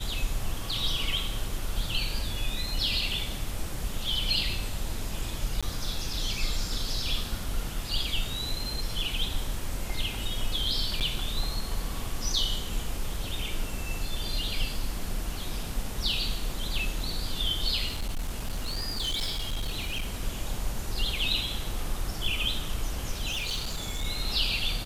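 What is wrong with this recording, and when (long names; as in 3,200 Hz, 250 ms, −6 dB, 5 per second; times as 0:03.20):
0:05.61–0:05.63: drop-out 16 ms
0:11.00–0:11.01: drop-out 8.3 ms
0:17.87–0:20.13: clipping −26.5 dBFS
0:23.31–0:24.05: clipping −27 dBFS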